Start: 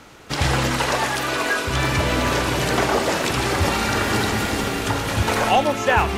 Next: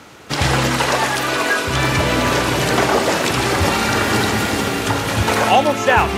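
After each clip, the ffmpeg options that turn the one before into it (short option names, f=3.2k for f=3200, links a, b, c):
-af "highpass=78,volume=4dB"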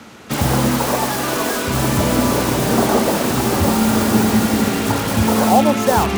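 -filter_complex "[0:a]equalizer=f=220:w=4.4:g=11,acrossover=split=340|1300[a][b][c];[c]aeval=exprs='(mod(10.6*val(0)+1,2)-1)/10.6':c=same[d];[a][b][d]amix=inputs=3:normalize=0"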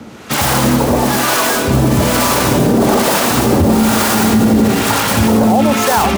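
-filter_complex "[0:a]aecho=1:1:490:0.282,acrossover=split=670[a][b];[a]aeval=exprs='val(0)*(1-0.7/2+0.7/2*cos(2*PI*1.1*n/s))':c=same[c];[b]aeval=exprs='val(0)*(1-0.7/2-0.7/2*cos(2*PI*1.1*n/s))':c=same[d];[c][d]amix=inputs=2:normalize=0,alimiter=limit=-12.5dB:level=0:latency=1:release=19,volume=9dB"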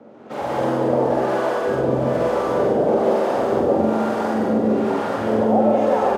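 -filter_complex "[0:a]bandpass=f=540:t=q:w=2:csg=0,asplit=2[a][b];[b]adelay=46,volume=-2dB[c];[a][c]amix=inputs=2:normalize=0,asplit=2[d][e];[e]aecho=0:1:145.8|192.4:0.708|0.794[f];[d][f]amix=inputs=2:normalize=0,volume=-4.5dB"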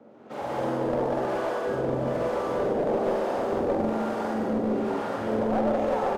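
-af "aeval=exprs='clip(val(0),-1,0.168)':c=same,volume=-7dB"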